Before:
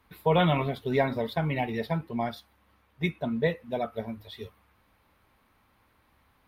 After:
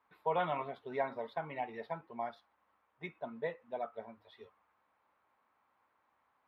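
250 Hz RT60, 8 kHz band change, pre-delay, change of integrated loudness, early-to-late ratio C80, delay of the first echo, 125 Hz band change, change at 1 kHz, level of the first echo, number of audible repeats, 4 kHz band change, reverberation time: none, n/a, none, -11.0 dB, none, none, -22.0 dB, -6.5 dB, none, none, -17.0 dB, none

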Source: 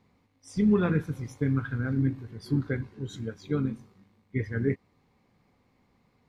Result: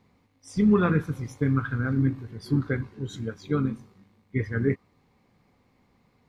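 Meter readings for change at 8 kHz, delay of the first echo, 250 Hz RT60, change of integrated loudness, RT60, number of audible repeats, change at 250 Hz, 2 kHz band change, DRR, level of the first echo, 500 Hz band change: n/a, none, none, +2.5 dB, none, none, +2.5 dB, +4.0 dB, none, none, +2.5 dB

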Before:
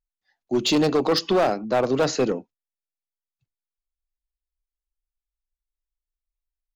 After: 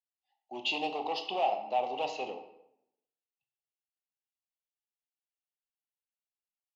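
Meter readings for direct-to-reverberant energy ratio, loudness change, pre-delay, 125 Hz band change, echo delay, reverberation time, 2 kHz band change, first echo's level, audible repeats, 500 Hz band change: 6.0 dB, -11.0 dB, 18 ms, under -25 dB, none, 0.80 s, -7.0 dB, none, none, -14.0 dB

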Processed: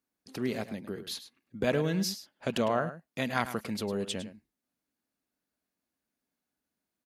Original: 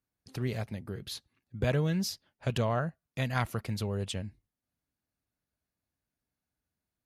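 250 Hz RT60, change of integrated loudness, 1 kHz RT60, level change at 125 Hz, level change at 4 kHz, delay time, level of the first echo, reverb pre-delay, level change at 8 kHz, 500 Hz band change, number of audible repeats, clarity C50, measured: none, +0.5 dB, none, -6.5 dB, +2.0 dB, 0.105 s, -12.5 dB, none, +2.0 dB, +3.0 dB, 1, none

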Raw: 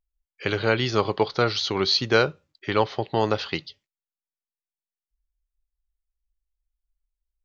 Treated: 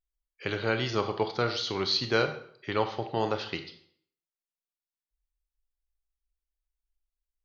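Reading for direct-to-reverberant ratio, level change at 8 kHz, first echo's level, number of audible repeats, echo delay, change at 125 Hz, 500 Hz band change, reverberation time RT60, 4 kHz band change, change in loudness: 7.5 dB, n/a, none, none, none, -6.0 dB, -6.0 dB, 0.60 s, -5.5 dB, -6.0 dB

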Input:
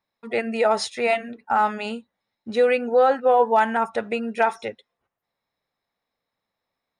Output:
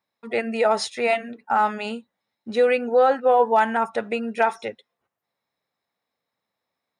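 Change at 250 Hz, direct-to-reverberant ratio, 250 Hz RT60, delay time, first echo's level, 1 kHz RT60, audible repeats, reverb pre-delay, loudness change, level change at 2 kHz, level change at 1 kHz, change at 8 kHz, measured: 0.0 dB, none, none, none, none, none, none, none, 0.0 dB, 0.0 dB, 0.0 dB, n/a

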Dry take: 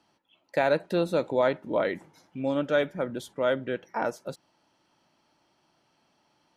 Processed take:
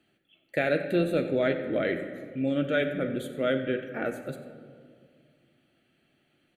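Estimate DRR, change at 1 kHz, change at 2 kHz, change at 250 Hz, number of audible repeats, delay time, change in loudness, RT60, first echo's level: 6.0 dB, -6.5 dB, +1.5 dB, +3.0 dB, 1, 92 ms, -0.5 dB, 2.0 s, -15.0 dB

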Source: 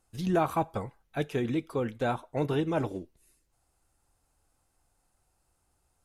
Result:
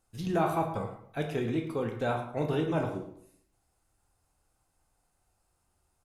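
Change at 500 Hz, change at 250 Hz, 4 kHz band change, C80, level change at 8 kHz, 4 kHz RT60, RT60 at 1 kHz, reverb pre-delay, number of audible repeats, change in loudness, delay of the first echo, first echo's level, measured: -0.5 dB, -1.5 dB, -1.0 dB, 9.5 dB, n/a, 0.40 s, 0.65 s, 14 ms, 1, -1.0 dB, 0.11 s, -13.0 dB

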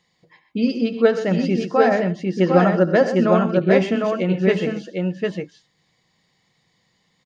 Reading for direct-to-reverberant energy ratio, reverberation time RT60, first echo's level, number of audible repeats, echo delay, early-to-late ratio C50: none, none, -15.5 dB, 3, 73 ms, none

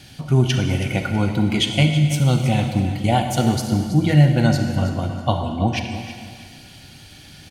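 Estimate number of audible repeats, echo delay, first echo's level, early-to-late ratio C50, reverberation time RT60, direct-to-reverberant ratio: 2, 0.324 s, -12.5 dB, 5.0 dB, 2.0 s, 4.5 dB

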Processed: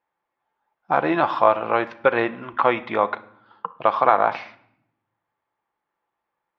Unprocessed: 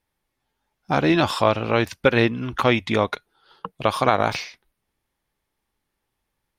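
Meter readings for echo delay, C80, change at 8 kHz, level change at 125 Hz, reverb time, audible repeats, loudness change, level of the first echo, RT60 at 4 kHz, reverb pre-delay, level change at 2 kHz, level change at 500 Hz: none, 20.5 dB, under -25 dB, -13.0 dB, 0.70 s, none, 0.0 dB, none, 0.60 s, 6 ms, -1.5 dB, 0.0 dB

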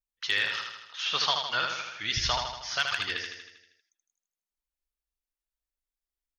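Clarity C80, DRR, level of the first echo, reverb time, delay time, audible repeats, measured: none, none, -5.0 dB, none, 79 ms, 7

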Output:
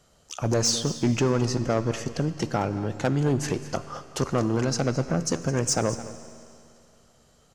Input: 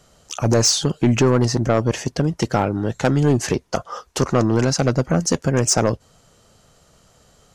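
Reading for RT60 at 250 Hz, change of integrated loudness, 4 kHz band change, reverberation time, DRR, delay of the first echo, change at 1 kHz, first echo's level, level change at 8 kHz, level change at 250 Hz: 2.6 s, -6.5 dB, -6.5 dB, 2.6 s, 10.5 dB, 0.214 s, -6.5 dB, -15.5 dB, -6.5 dB, -6.5 dB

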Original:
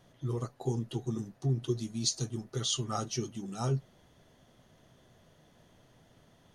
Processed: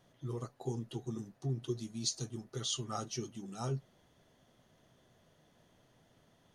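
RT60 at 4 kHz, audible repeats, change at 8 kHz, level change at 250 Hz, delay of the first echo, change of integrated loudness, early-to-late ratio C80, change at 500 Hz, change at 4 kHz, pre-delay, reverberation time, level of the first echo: none, none, -4.5 dB, -5.5 dB, none, -5.5 dB, none, -5.0 dB, -4.5 dB, none, none, none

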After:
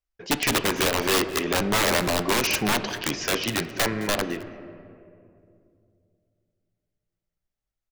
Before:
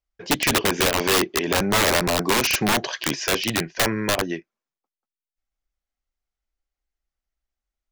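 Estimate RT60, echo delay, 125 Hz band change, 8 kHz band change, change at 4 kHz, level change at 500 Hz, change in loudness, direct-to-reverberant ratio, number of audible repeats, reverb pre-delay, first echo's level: 2.6 s, 0.214 s, -2.5 dB, -3.0 dB, -3.0 dB, -2.5 dB, -2.5 dB, 10.0 dB, 1, 3 ms, -20.5 dB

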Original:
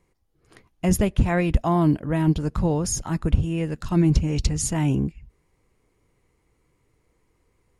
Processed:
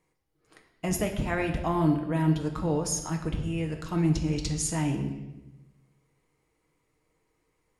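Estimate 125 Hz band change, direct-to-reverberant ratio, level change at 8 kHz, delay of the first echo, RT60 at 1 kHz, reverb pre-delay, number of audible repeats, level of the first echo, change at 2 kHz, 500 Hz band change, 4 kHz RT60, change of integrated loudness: -6.5 dB, 3.0 dB, -3.0 dB, none, 0.90 s, 6 ms, none, none, -2.5 dB, -4.5 dB, 0.90 s, -5.5 dB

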